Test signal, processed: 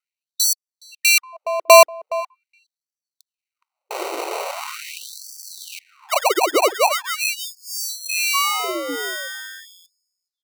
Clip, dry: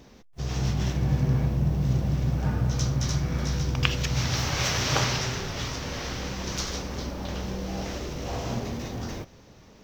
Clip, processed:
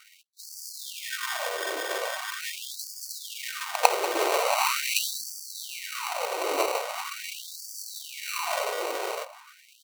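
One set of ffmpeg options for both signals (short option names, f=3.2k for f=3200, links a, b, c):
-filter_complex "[0:a]highpass=83,equalizer=f=240:w=2.4:g=5.5,aecho=1:1:1.6:0.68,acrossover=split=130|800|7700[a][b][c][d];[a]acompressor=threshold=-39dB:ratio=6[e];[e][b][c][d]amix=inputs=4:normalize=0,acrusher=samples=26:mix=1:aa=0.000001,asplit=2[f][g];[g]adelay=418,lowpass=f=1k:p=1,volume=-13dB,asplit=2[h][i];[i]adelay=418,lowpass=f=1k:p=1,volume=0.35,asplit=2[j][k];[k]adelay=418,lowpass=f=1k:p=1,volume=0.35[l];[f][h][j][l]amix=inputs=4:normalize=0,afftfilt=real='re*gte(b*sr/1024,300*pow(4500/300,0.5+0.5*sin(2*PI*0.42*pts/sr)))':imag='im*gte(b*sr/1024,300*pow(4500/300,0.5+0.5*sin(2*PI*0.42*pts/sr)))':win_size=1024:overlap=0.75,volume=6.5dB"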